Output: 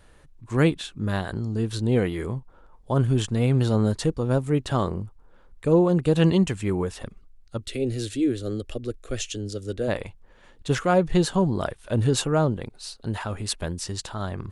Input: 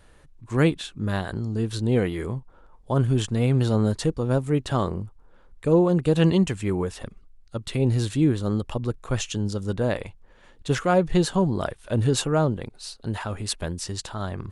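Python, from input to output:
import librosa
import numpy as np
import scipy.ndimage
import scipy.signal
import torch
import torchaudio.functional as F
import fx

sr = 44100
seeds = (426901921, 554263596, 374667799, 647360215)

y = fx.fixed_phaser(x, sr, hz=390.0, stages=4, at=(7.6, 9.87), fade=0.02)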